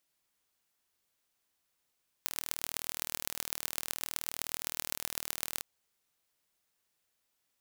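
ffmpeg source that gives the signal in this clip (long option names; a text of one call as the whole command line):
ffmpeg -f lavfi -i "aevalsrc='0.596*eq(mod(n,1119),0)*(0.5+0.5*eq(mod(n,5595),0))':duration=3.36:sample_rate=44100" out.wav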